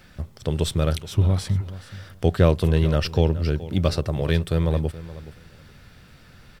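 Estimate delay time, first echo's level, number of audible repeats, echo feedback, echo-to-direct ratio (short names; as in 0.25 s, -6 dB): 0.424 s, -16.0 dB, 2, 18%, -16.0 dB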